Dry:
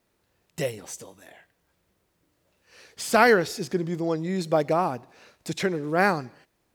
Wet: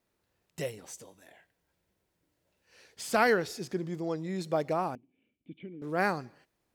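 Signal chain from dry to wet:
0:01.03–0:03.03: notch filter 1,200 Hz, Q 9.2
0:04.95–0:05.82: formant resonators in series i
level −7 dB

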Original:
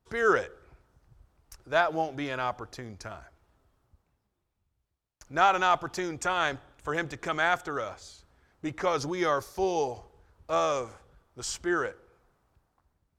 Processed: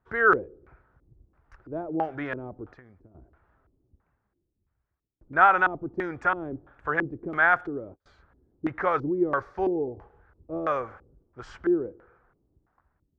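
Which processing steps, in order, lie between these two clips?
0:02.71–0:03.15: downward compressor 16 to 1, threshold −49 dBFS, peak gain reduction 15 dB
0:07.41–0:08.06: noise gate −38 dBFS, range −31 dB
auto-filter low-pass square 1.5 Hz 330–1,600 Hz

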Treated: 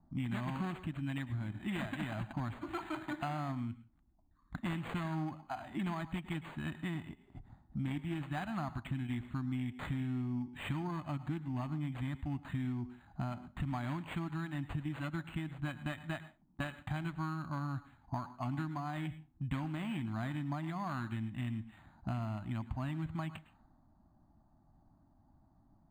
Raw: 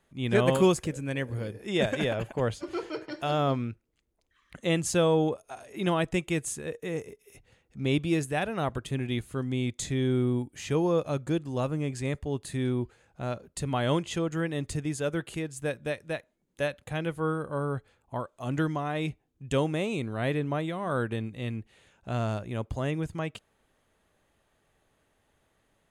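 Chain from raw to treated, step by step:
phase distortion by the signal itself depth 0.19 ms
Chebyshev band-stop filter 280–770 Hz, order 2
low-pass that shuts in the quiet parts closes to 1,200 Hz, open at −30 dBFS
downward compressor 8 to 1, threshold −44 dBFS, peak gain reduction 21 dB
low-pass that shuts in the quiet parts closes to 580 Hz, open at −44 dBFS
on a send at −14 dB: convolution reverb RT60 0.25 s, pre-delay 102 ms
on the sum: linearly interpolated sample-rate reduction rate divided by 8×
level +9 dB

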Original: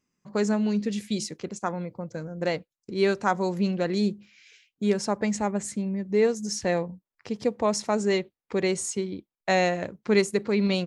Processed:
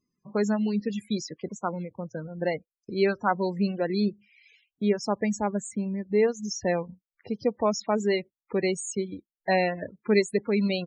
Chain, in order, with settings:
reverb reduction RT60 0.51 s
spectral peaks only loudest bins 32

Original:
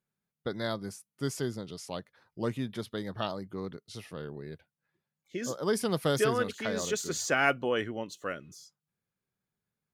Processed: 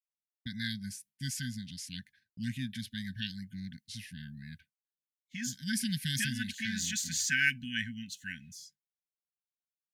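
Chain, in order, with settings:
linear-phase brick-wall band-stop 260–1,500 Hz
parametric band 140 Hz −4 dB 1.2 octaves
downward expander −57 dBFS
level +2.5 dB

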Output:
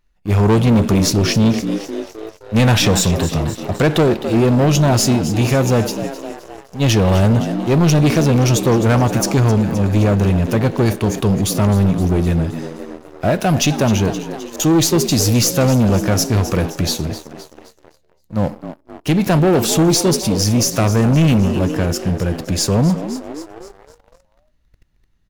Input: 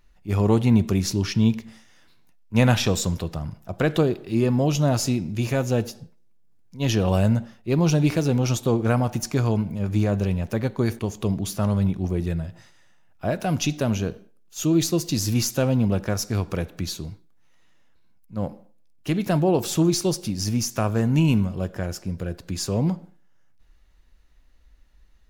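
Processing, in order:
0:13.92–0:14.60: volume swells 684 ms
echo with shifted repeats 260 ms, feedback 58%, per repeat +72 Hz, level −14 dB
leveller curve on the samples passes 3

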